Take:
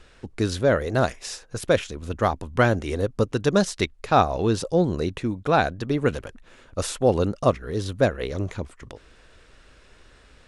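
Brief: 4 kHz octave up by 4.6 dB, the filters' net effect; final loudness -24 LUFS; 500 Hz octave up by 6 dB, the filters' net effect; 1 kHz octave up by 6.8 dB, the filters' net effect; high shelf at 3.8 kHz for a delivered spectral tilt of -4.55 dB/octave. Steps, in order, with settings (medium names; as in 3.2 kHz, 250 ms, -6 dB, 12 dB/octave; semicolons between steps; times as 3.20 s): peaking EQ 500 Hz +5 dB; peaking EQ 1 kHz +7.5 dB; treble shelf 3.8 kHz -3.5 dB; peaking EQ 4 kHz +7 dB; trim -5 dB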